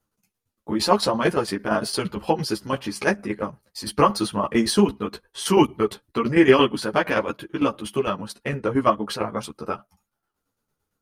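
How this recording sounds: tremolo saw down 8.8 Hz, depth 70%; a shimmering, thickened sound

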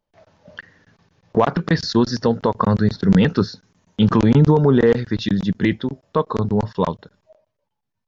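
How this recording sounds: noise floor -78 dBFS; spectral tilt -6.5 dB/oct

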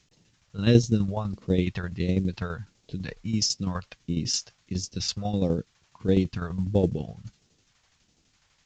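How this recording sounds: phasing stages 2, 1.5 Hz, lowest notch 280–1400 Hz; a quantiser's noise floor 12-bit, dither none; tremolo saw down 12 Hz, depth 65%; A-law

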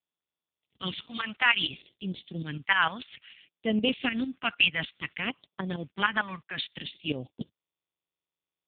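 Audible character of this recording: a quantiser's noise floor 10-bit, dither none; phasing stages 2, 0.59 Hz, lowest notch 380–1500 Hz; tremolo saw up 6.6 Hz, depth 70%; AMR-NB

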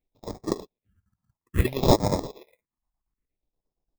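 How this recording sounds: chopped level 8.5 Hz, depth 65%, duty 65%; aliases and images of a low sample rate 1500 Hz, jitter 0%; phasing stages 4, 0.6 Hz, lowest notch 440–2700 Hz

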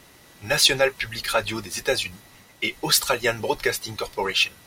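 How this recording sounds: noise floor -52 dBFS; spectral tilt -2.5 dB/oct

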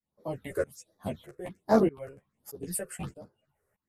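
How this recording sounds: phasing stages 6, 1.3 Hz, lowest notch 220–2700 Hz; tremolo saw up 1.6 Hz, depth 95%; a shimmering, thickened sound

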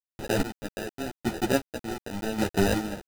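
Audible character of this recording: aliases and images of a low sample rate 1100 Hz, jitter 0%; chopped level 0.84 Hz, depth 65%, duty 35%; a quantiser's noise floor 6-bit, dither none; a shimmering, thickened sound

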